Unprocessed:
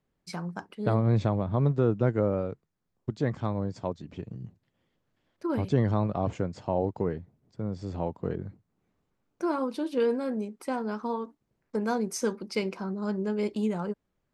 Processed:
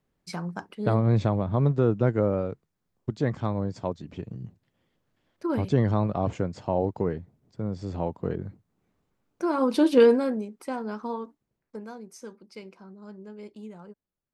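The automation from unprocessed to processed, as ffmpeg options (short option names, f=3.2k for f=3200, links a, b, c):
-af "volume=11.5dB,afade=t=in:st=9.53:d=0.31:silence=0.334965,afade=t=out:st=9.84:d=0.59:silence=0.237137,afade=t=out:st=11.23:d=0.69:silence=0.237137"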